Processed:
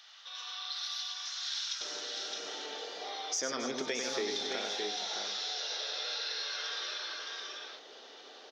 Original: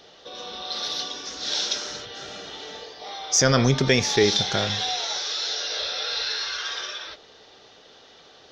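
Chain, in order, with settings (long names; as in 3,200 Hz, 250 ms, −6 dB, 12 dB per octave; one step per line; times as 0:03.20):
high-pass filter 1,100 Hz 24 dB per octave, from 0:01.81 270 Hz
multi-tap delay 96/265/456/615/653 ms −5.5/−13.5/−19/−8/−13 dB
downward compressor 2.5 to 1, threshold −35 dBFS, peak gain reduction 13.5 dB
level −3 dB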